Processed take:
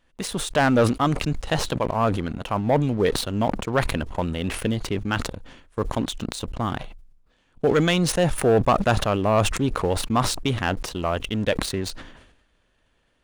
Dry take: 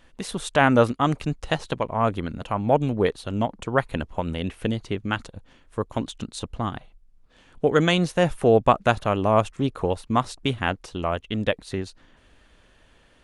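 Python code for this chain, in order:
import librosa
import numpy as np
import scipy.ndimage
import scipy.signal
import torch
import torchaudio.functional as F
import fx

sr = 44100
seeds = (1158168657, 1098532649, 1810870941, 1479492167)

y = fx.leveller(x, sr, passes=2)
y = fx.sustainer(y, sr, db_per_s=60.0)
y = y * 10.0 ** (-6.5 / 20.0)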